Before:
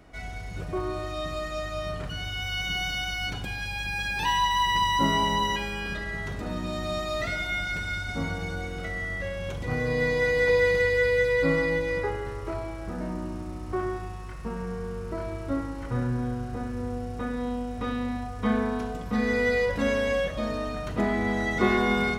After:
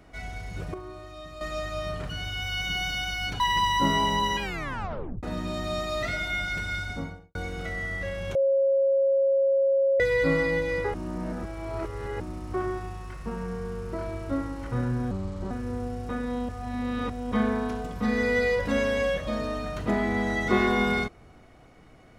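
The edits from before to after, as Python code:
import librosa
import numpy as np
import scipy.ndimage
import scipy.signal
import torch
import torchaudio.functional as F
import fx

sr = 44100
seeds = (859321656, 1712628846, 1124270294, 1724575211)

y = fx.studio_fade_out(x, sr, start_s=7.99, length_s=0.55)
y = fx.edit(y, sr, fx.clip_gain(start_s=0.74, length_s=0.67, db=-10.0),
    fx.cut(start_s=3.4, length_s=1.19),
    fx.tape_stop(start_s=5.61, length_s=0.81),
    fx.bleep(start_s=9.54, length_s=1.65, hz=545.0, db=-19.0),
    fx.reverse_span(start_s=12.13, length_s=1.26),
    fx.speed_span(start_s=16.3, length_s=0.31, speed=0.78),
    fx.reverse_span(start_s=17.59, length_s=0.83), tone=tone)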